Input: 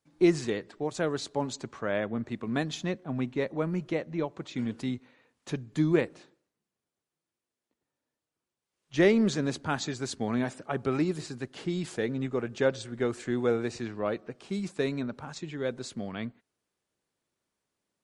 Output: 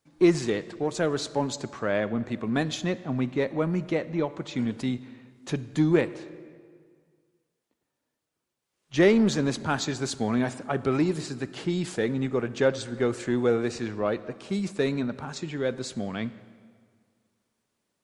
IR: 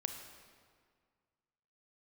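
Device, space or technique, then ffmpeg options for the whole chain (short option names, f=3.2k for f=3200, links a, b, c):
saturated reverb return: -filter_complex "[0:a]asplit=2[a][b];[1:a]atrim=start_sample=2205[c];[b][c]afir=irnorm=-1:irlink=0,asoftclip=type=tanh:threshold=-27.5dB,volume=-6dB[d];[a][d]amix=inputs=2:normalize=0,volume=1.5dB"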